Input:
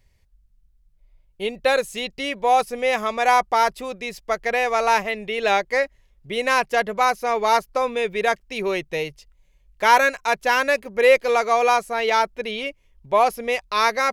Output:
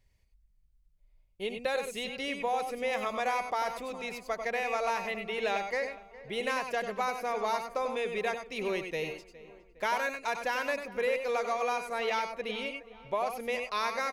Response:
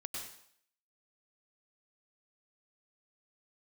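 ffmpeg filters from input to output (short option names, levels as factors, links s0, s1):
-filter_complex "[0:a]acompressor=threshold=0.112:ratio=6,asplit=2[s0][s1];[s1]adelay=412,lowpass=f=2300:p=1,volume=0.133,asplit=2[s2][s3];[s3]adelay=412,lowpass=f=2300:p=1,volume=0.53,asplit=2[s4][s5];[s5]adelay=412,lowpass=f=2300:p=1,volume=0.53,asplit=2[s6][s7];[s7]adelay=412,lowpass=f=2300:p=1,volume=0.53,asplit=2[s8][s9];[s9]adelay=412,lowpass=f=2300:p=1,volume=0.53[s10];[s0][s2][s4][s6][s8][s10]amix=inputs=6:normalize=0[s11];[1:a]atrim=start_sample=2205,atrim=end_sample=4410[s12];[s11][s12]afir=irnorm=-1:irlink=0,volume=0.631"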